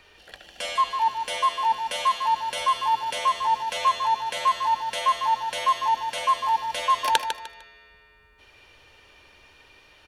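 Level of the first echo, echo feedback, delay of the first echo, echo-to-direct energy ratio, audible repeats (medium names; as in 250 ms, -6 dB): -8.0 dB, 28%, 151 ms, -7.5 dB, 3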